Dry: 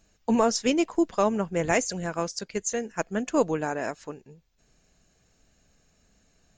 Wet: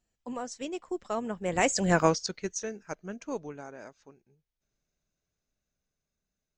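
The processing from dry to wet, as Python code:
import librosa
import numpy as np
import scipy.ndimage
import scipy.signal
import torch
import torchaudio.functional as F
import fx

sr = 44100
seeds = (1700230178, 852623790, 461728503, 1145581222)

y = fx.doppler_pass(x, sr, speed_mps=24, closest_m=2.8, pass_at_s=1.96)
y = y * librosa.db_to_amplitude(8.5)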